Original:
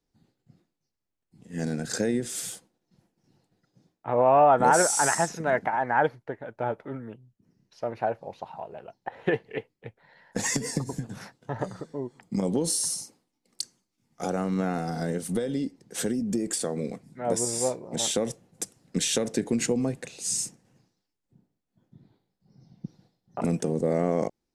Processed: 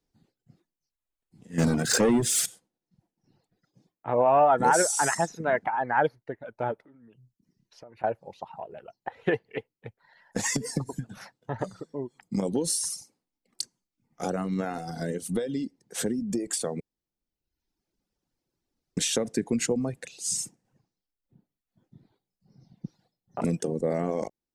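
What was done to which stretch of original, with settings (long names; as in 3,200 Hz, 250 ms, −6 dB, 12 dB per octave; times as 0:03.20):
0:01.58–0:02.46: leveller curve on the samples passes 3
0:06.83–0:08.04: downward compressor 8 to 1, threshold −44 dBFS
0:16.80–0:18.97: fill with room tone
whole clip: reverb reduction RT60 1 s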